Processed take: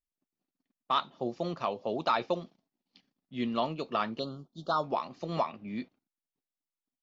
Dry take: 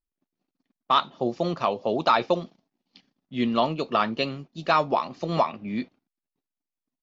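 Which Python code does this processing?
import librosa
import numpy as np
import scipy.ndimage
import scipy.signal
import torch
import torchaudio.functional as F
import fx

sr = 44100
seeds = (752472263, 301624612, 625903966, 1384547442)

y = fx.ellip_bandstop(x, sr, low_hz=1400.0, high_hz=3300.0, order=3, stop_db=40, at=(4.19, 4.84))
y = y * librosa.db_to_amplitude(-7.5)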